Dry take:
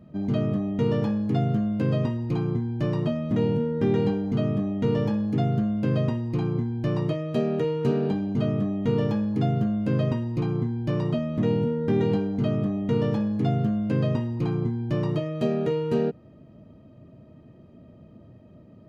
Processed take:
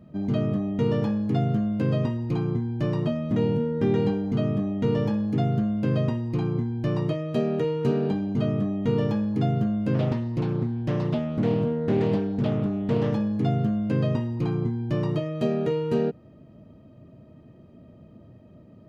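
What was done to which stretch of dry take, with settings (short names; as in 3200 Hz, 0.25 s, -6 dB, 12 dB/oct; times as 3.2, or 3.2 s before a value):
9.94–13.14 Doppler distortion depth 0.32 ms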